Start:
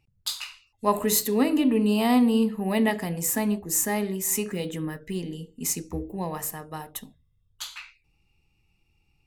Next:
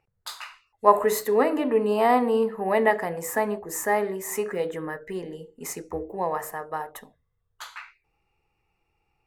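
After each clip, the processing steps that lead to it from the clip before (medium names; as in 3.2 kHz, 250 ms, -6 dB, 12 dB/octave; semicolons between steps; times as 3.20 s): high-order bell 880 Hz +15 dB 2.7 oct; trim -8 dB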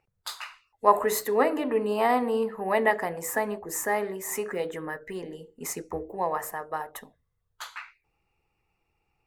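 harmonic-percussive split percussive +5 dB; trim -4 dB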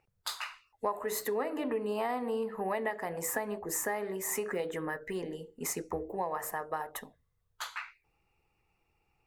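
compression 6:1, threshold -30 dBFS, peak gain reduction 16.5 dB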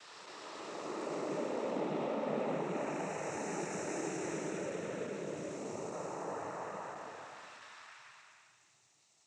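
spectral blur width 984 ms; added noise violet -60 dBFS; noise-vocoded speech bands 12; trim +2 dB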